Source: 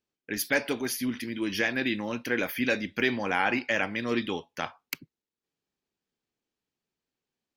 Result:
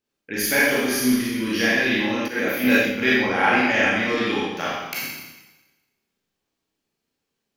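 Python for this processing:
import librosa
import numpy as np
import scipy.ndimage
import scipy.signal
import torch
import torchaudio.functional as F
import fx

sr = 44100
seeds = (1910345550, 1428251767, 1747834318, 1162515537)

y = fx.spec_trails(x, sr, decay_s=0.31)
y = fx.rev_schroeder(y, sr, rt60_s=1.1, comb_ms=28, drr_db=-6.5)
y = fx.band_widen(y, sr, depth_pct=100, at=(2.28, 3.56))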